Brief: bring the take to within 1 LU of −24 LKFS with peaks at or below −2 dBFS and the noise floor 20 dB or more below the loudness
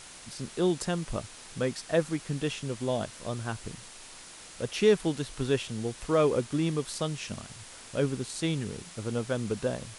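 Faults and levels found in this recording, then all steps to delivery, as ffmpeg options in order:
background noise floor −48 dBFS; target noise floor −51 dBFS; integrated loudness −30.5 LKFS; sample peak −11.0 dBFS; target loudness −24.0 LKFS
→ -af "afftdn=noise_reduction=6:noise_floor=-48"
-af "volume=6.5dB"

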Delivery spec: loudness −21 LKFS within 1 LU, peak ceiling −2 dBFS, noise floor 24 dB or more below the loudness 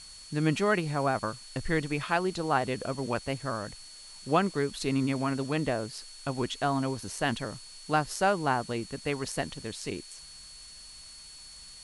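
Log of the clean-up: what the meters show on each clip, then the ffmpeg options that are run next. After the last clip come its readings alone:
interfering tone 4,400 Hz; level of the tone −48 dBFS; background noise floor −48 dBFS; target noise floor −55 dBFS; integrated loudness −30.5 LKFS; sample peak −10.5 dBFS; target loudness −21.0 LKFS
→ -af "bandreject=frequency=4400:width=30"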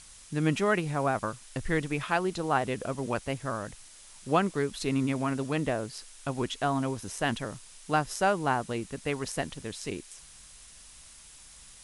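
interfering tone none found; background noise floor −52 dBFS; target noise floor −55 dBFS
→ -af "afftdn=noise_reduction=6:noise_floor=-52"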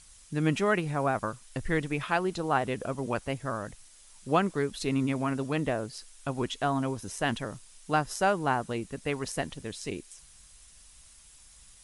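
background noise floor −55 dBFS; integrated loudness −30.5 LKFS; sample peak −10.5 dBFS; target loudness −21.0 LKFS
→ -af "volume=9.5dB,alimiter=limit=-2dB:level=0:latency=1"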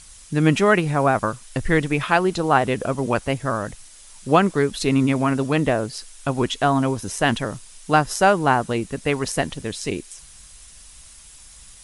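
integrated loudness −21.0 LKFS; sample peak −2.0 dBFS; background noise floor −46 dBFS

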